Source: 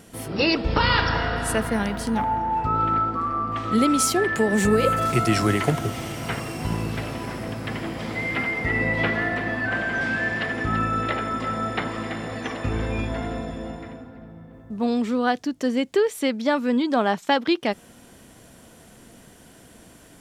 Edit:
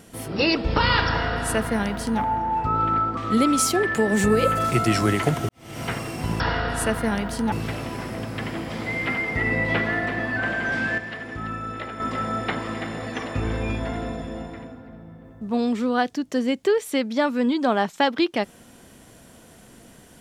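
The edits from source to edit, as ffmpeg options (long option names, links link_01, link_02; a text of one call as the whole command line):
ffmpeg -i in.wav -filter_complex "[0:a]asplit=7[link_01][link_02][link_03][link_04][link_05][link_06][link_07];[link_01]atrim=end=3.172[link_08];[link_02]atrim=start=3.578:end=5.9,asetpts=PTS-STARTPTS,afade=type=out:start_time=2.318:duration=0.004:curve=hsin[link_09];[link_03]atrim=start=5.9:end=6.812,asetpts=PTS-STARTPTS,afade=type=in:duration=0.31:curve=qua[link_10];[link_04]atrim=start=1.078:end=2.202[link_11];[link_05]atrim=start=6.808:end=10.272[link_12];[link_06]atrim=start=10.268:end=11.292,asetpts=PTS-STARTPTS,volume=-7.5dB[link_13];[link_07]atrim=start=11.288[link_14];[link_09][link_10]concat=n=2:v=0:a=1[link_15];[link_08][link_15]acrossfade=duration=0.004:curve1=hsin:curve2=hsin[link_16];[link_16][link_11]acrossfade=duration=0.004:curve1=hsin:curve2=hsin[link_17];[link_17][link_12]acrossfade=duration=0.004:curve1=hsin:curve2=hsin[link_18];[link_18][link_13]acrossfade=duration=0.004:curve1=hsin:curve2=hsin[link_19];[link_19][link_14]acrossfade=duration=0.004:curve1=hsin:curve2=hsin" out.wav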